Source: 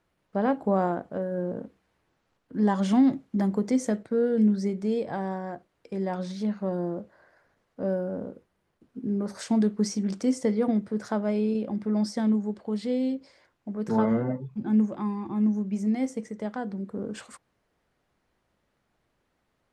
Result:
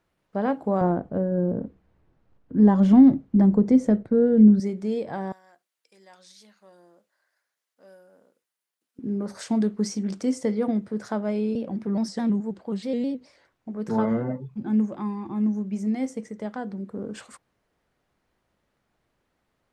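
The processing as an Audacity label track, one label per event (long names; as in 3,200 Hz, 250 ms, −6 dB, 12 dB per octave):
0.810000	4.600000	spectral tilt −3.5 dB per octave
5.320000	8.990000	first difference
11.550000	13.730000	pitch modulation by a square or saw wave square 4.7 Hz, depth 100 cents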